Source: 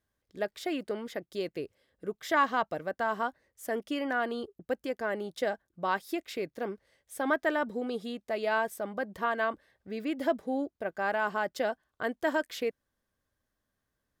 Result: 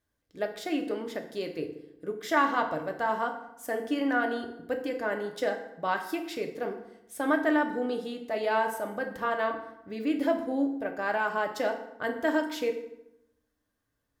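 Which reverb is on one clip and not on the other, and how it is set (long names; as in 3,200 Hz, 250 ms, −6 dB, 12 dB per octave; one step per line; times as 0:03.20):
feedback delay network reverb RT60 0.85 s, low-frequency decay 1.2×, high-frequency decay 0.7×, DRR 3.5 dB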